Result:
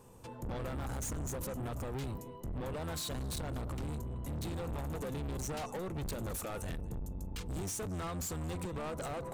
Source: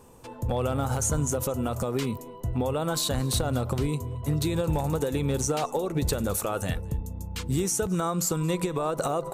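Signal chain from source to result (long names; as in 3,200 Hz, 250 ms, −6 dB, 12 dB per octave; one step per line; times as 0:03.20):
sub-octave generator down 1 octave, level +1 dB
soft clipping −30.5 dBFS, distortion −7 dB
level −5.5 dB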